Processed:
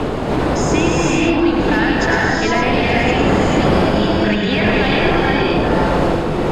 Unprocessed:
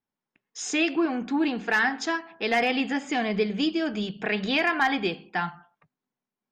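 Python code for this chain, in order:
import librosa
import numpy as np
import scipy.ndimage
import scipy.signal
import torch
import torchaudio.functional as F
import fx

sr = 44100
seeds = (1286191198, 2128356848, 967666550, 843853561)

p1 = fx.dmg_wind(x, sr, seeds[0], corner_hz=520.0, level_db=-22.0)
p2 = fx.notch(p1, sr, hz=5800.0, q=13.0)
p3 = fx.over_compress(p2, sr, threshold_db=-24.0, ratio=-1.0)
p4 = p2 + (p3 * librosa.db_to_amplitude(-0.5))
p5 = 10.0 ** (-6.5 / 20.0) * np.tanh(p4 / 10.0 ** (-6.5 / 20.0))
p6 = p5 + fx.echo_single(p5, sr, ms=104, db=-6.5, dry=0)
p7 = fx.rev_gated(p6, sr, seeds[1], gate_ms=490, shape='rising', drr_db=-4.5)
p8 = fx.band_squash(p7, sr, depth_pct=70)
y = p8 * librosa.db_to_amplitude(-4.0)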